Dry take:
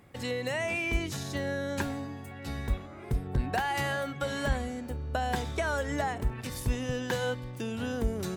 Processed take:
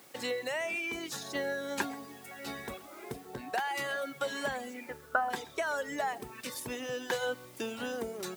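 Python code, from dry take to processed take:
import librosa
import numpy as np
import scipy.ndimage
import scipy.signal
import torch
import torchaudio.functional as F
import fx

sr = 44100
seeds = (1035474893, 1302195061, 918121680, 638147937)

y = fx.dereverb_blind(x, sr, rt60_s=0.88)
y = fx.lowpass_res(y, sr, hz=fx.line((4.73, 2700.0), (5.29, 1100.0)), q=8.5, at=(4.73, 5.29), fade=0.02)
y = fx.quant_dither(y, sr, seeds[0], bits=10, dither='triangular')
y = fx.rider(y, sr, range_db=3, speed_s=0.5)
y = scipy.signal.sosfilt(scipy.signal.butter(2, 320.0, 'highpass', fs=sr, output='sos'), y)
y = y + 10.0 ** (-21.5 / 20.0) * np.pad(y, (int(132 * sr / 1000.0), 0))[:len(y)]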